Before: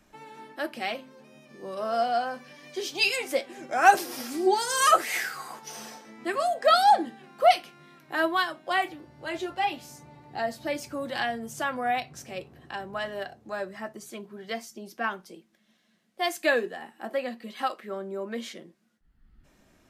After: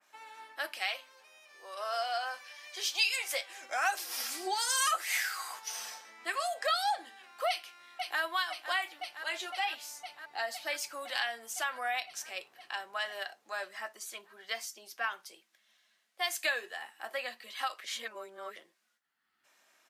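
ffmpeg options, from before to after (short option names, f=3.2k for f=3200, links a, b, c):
-filter_complex "[0:a]asettb=1/sr,asplit=3[a][b][c];[a]atrim=end=0.774[d];[b]atrim=start=0.77:end=3.63,asetpts=PTS-STARTPTS,afade=t=in:d=0.004:c=qsin,afade=t=out:st=2.856:d=0.004:c=qsin,highpass=430[e];[c]atrim=start=3.626[f];[d][e]acrossfade=d=0.004:c1=hsin:c2=qsin[g];[g][f]acrossfade=d=0.004:c1=qsin:c2=hsin,asplit=2[h][i];[i]afade=t=in:st=7.48:d=0.01,afade=t=out:st=8.21:d=0.01,aecho=0:1:510|1020|1530|2040|2550|3060|3570|4080|4590|5100|5610|6120:0.223872|0.179098|0.143278|0.114623|0.091698|0.0733584|0.0586867|0.0469494|0.0375595|0.0300476|0.0240381|0.0192305[j];[h][j]amix=inputs=2:normalize=0,asplit=3[k][l][m];[k]atrim=end=17.842[n];[l]atrim=start=17.838:end=18.562,asetpts=PTS-STARTPTS,areverse[o];[m]atrim=start=18.558[p];[n][o]acrossfade=d=0.004:c1=hsin:c2=hsin[q];[q][p]acrossfade=d=0.004:c1=hsin:c2=hsin,highpass=950,acompressor=threshold=-31dB:ratio=3,adynamicequalizer=threshold=0.00562:dfrequency=2100:dqfactor=0.7:tfrequency=2100:tqfactor=0.7:attack=5:release=100:ratio=0.375:range=2:mode=boostabove:tftype=highshelf"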